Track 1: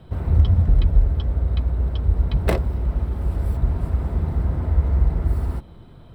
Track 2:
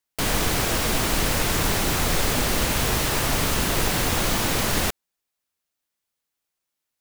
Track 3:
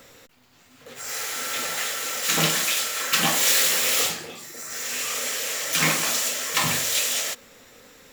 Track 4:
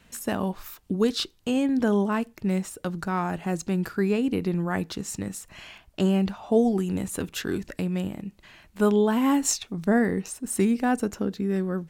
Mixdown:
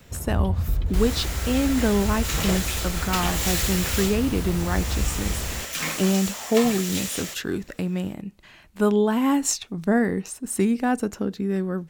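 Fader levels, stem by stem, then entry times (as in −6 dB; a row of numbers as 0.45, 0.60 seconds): −8.0, −12.0, −7.0, +1.0 decibels; 0.00, 0.75, 0.00, 0.00 seconds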